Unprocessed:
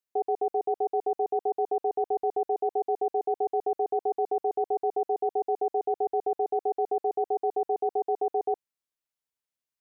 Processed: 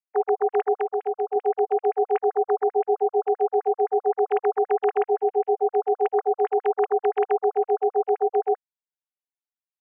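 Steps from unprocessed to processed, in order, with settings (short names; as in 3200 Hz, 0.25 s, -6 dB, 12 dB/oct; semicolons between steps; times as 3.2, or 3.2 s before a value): sine-wave speech; 0.78–1.36 compressor 2.5:1, threshold -29 dBFS, peak gain reduction 4.5 dB; gain +5.5 dB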